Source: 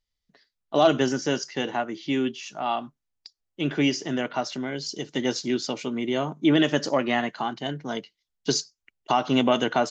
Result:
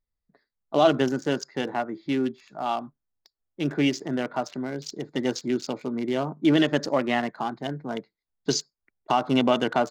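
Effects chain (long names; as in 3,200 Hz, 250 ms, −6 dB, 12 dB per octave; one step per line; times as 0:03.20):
adaptive Wiener filter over 15 samples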